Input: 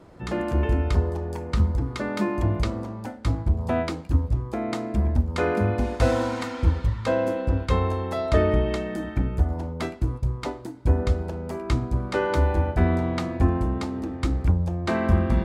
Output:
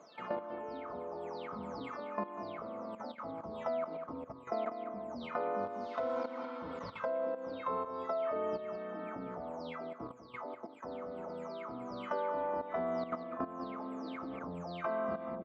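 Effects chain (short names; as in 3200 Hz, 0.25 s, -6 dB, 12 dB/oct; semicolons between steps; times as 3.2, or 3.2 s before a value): spectral delay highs early, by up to 0.324 s; speaker cabinet 390–5300 Hz, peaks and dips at 390 Hz -7 dB, 600 Hz +6 dB, 1200 Hz +6 dB, 1800 Hz -7 dB, 2800 Hz -4 dB, 4100 Hz -3 dB; comb 4.6 ms, depth 41%; level quantiser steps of 14 dB; high shelf 3900 Hz -12 dB; echo 0.195 s -13 dB; compressor 3:1, threshold -34 dBFS, peak gain reduction 7 dB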